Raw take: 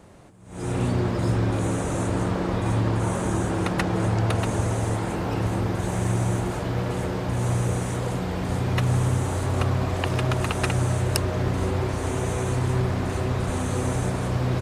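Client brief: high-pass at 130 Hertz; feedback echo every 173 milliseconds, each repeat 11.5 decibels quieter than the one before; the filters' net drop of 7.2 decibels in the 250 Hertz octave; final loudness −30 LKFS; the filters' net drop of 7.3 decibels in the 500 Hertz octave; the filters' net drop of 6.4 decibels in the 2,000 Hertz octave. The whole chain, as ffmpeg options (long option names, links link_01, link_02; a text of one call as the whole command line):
ffmpeg -i in.wav -af "highpass=130,equalizer=frequency=250:width_type=o:gain=-8,equalizer=frequency=500:width_type=o:gain=-6.5,equalizer=frequency=2000:width_type=o:gain=-8,aecho=1:1:173|346|519:0.266|0.0718|0.0194,volume=1dB" out.wav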